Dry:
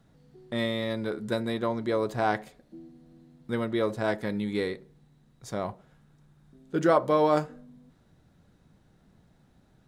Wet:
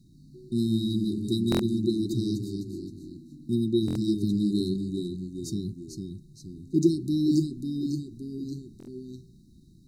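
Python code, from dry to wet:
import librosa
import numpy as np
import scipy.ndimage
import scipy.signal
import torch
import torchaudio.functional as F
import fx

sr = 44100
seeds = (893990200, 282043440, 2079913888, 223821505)

y = fx.echo_pitch(x, sr, ms=123, semitones=-1, count=3, db_per_echo=-6.0)
y = fx.brickwall_bandstop(y, sr, low_hz=390.0, high_hz=3700.0)
y = fx.buffer_glitch(y, sr, at_s=(1.5, 3.86, 8.78), block=1024, repeats=3)
y = y * 10.0 ** (5.5 / 20.0)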